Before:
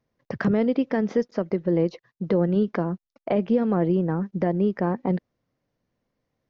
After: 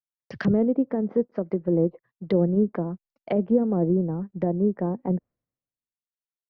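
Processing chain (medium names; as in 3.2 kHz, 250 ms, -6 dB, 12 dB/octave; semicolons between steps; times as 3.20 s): low-pass that closes with the level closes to 670 Hz, closed at -20 dBFS; three bands expanded up and down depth 100%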